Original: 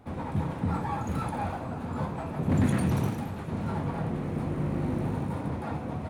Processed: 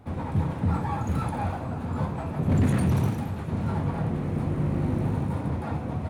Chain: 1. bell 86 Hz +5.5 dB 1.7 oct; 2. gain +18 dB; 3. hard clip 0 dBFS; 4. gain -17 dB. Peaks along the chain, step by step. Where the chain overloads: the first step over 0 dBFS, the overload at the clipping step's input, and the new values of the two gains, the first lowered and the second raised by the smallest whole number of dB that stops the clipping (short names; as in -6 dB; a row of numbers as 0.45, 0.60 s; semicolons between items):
-10.5, +7.5, 0.0, -17.0 dBFS; step 2, 7.5 dB; step 2 +10 dB, step 4 -9 dB